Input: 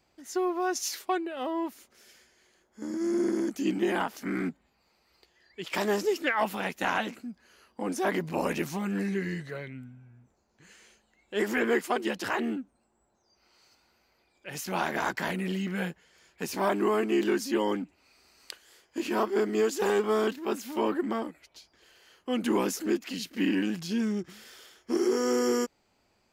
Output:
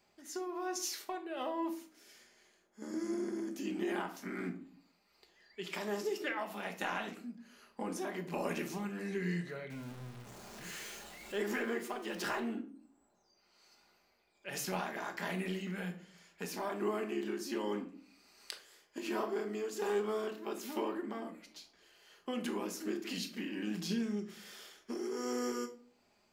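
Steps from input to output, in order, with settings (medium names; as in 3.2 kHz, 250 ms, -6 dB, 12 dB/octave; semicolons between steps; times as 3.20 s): 9.70–12.40 s: jump at every zero crossing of -40.5 dBFS; bass shelf 150 Hz -9 dB; compression 4:1, threshold -33 dBFS, peak gain reduction 10 dB; tremolo 1.3 Hz, depth 39%; simulated room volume 470 m³, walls furnished, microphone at 1.3 m; trim -2 dB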